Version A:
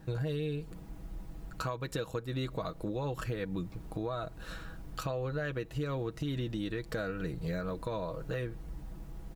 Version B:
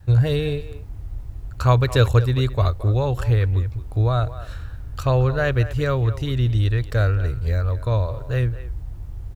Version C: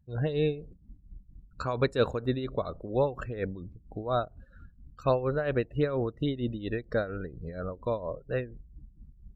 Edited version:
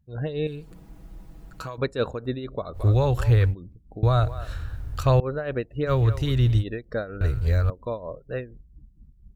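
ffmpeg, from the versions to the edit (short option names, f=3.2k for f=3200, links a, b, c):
-filter_complex "[1:a]asplit=4[a][b][c][d];[2:a]asplit=6[e][f][g][h][i][j];[e]atrim=end=0.472[k];[0:a]atrim=start=0.468:end=1.782[l];[f]atrim=start=1.778:end=2.79[m];[a]atrim=start=2.73:end=3.55[n];[g]atrim=start=3.49:end=4.032[o];[b]atrim=start=4.028:end=5.202[p];[h]atrim=start=5.198:end=5.92[q];[c]atrim=start=5.86:end=6.64[r];[i]atrim=start=6.58:end=7.212[s];[d]atrim=start=7.208:end=7.702[t];[j]atrim=start=7.698[u];[k][l]acrossfade=d=0.004:c1=hsin:c2=hsin[v];[v][m]acrossfade=d=0.004:c1=hsin:c2=hsin[w];[w][n]acrossfade=d=0.06:c1=tri:c2=tri[x];[x][o]acrossfade=d=0.06:c1=tri:c2=tri[y];[y][p]acrossfade=d=0.004:c1=hsin:c2=hsin[z];[z][q]acrossfade=d=0.004:c1=hsin:c2=hsin[aa];[aa][r]acrossfade=d=0.06:c1=tri:c2=tri[ab];[ab][s]acrossfade=d=0.06:c1=tri:c2=tri[ac];[ac][t]acrossfade=d=0.004:c1=hsin:c2=hsin[ad];[ad][u]acrossfade=d=0.004:c1=hsin:c2=hsin"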